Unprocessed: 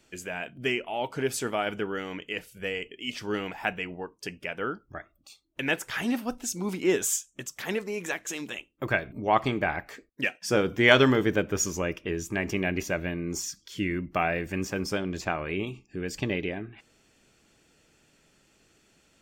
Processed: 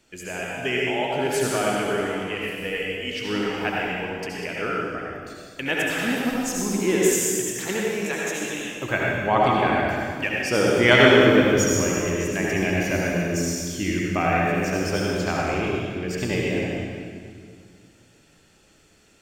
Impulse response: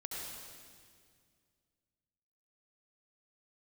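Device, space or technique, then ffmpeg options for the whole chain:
stairwell: -filter_complex "[1:a]atrim=start_sample=2205[a];[0:a][a]afir=irnorm=-1:irlink=0,volume=6dB"

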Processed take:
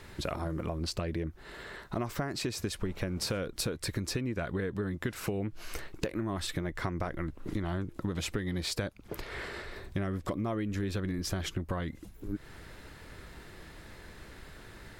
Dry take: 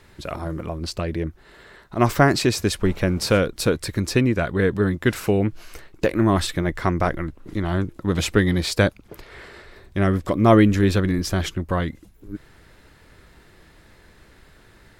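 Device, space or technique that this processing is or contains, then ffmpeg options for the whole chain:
serial compression, leveller first: -af "acompressor=threshold=-22dB:ratio=2,acompressor=threshold=-33dB:ratio=6,volume=2dB"

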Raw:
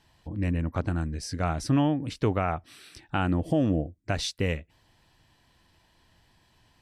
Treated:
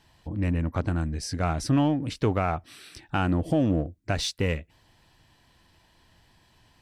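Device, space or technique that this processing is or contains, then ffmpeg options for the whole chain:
parallel distortion: -filter_complex "[0:a]asplit=2[a][b];[b]asoftclip=type=hard:threshold=-30dB,volume=-9dB[c];[a][c]amix=inputs=2:normalize=0"

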